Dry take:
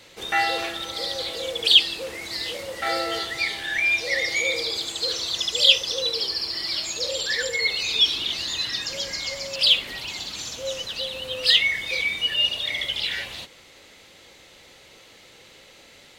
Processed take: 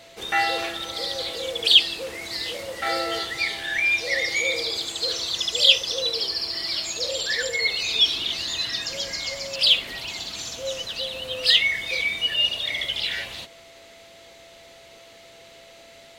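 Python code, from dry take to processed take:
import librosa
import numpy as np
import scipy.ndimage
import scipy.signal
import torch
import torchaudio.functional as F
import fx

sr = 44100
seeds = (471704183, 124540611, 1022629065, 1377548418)

y = x + 10.0 ** (-49.0 / 20.0) * np.sin(2.0 * np.pi * 670.0 * np.arange(len(x)) / sr)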